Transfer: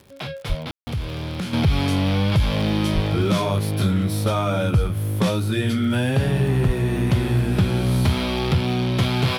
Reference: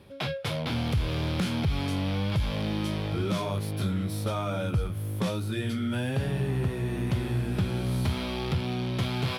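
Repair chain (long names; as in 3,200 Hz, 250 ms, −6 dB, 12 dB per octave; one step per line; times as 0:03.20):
click removal
0:00.48–0:00.60: high-pass filter 140 Hz 24 dB per octave
0:02.94–0:03.06: high-pass filter 140 Hz 24 dB per octave
0:06.66–0:06.78: high-pass filter 140 Hz 24 dB per octave
ambience match 0:00.71–0:00.87
level 0 dB, from 0:01.53 −8.5 dB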